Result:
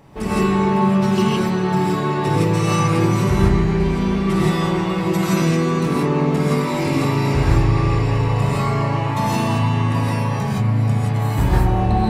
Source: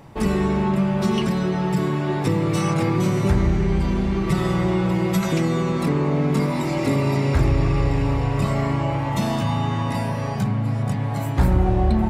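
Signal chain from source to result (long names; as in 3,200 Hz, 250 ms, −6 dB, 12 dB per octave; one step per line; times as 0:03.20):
reverb whose tail is shaped and stops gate 190 ms rising, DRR −7 dB
level −3.5 dB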